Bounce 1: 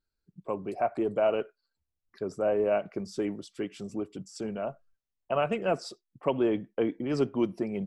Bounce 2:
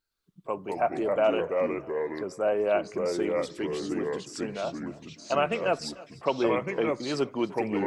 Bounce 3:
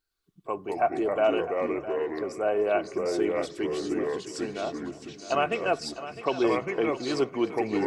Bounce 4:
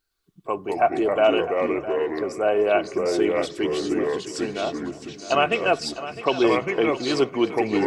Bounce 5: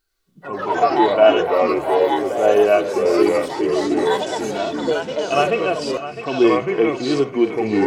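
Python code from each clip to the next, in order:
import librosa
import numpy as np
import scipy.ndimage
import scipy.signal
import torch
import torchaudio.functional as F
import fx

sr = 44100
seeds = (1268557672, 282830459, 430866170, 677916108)

y1 = fx.echo_feedback(x, sr, ms=301, feedback_pct=46, wet_db=-21.0)
y1 = fx.echo_pitch(y1, sr, ms=114, semitones=-3, count=2, db_per_echo=-3.0)
y1 = fx.low_shelf(y1, sr, hz=420.0, db=-11.0)
y1 = y1 * librosa.db_to_amplitude(5.0)
y2 = y1 + 0.35 * np.pad(y1, (int(2.7 * sr / 1000.0), 0))[:len(y1)]
y2 = fx.echo_feedback(y2, sr, ms=657, feedback_pct=29, wet_db=-13.5)
y3 = fx.dynamic_eq(y2, sr, hz=3100.0, q=1.9, threshold_db=-48.0, ratio=4.0, max_db=5)
y3 = y3 * librosa.db_to_amplitude(5.0)
y4 = fx.hum_notches(y3, sr, base_hz=60, count=3)
y4 = fx.hpss(y4, sr, part='percussive', gain_db=-17)
y4 = fx.echo_pitch(y4, sr, ms=82, semitones=5, count=3, db_per_echo=-6.0)
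y4 = y4 * librosa.db_to_amplitude(7.0)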